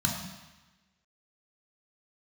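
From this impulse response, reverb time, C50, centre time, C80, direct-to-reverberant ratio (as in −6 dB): 1.1 s, 4.0 dB, 46 ms, 6.0 dB, 0.0 dB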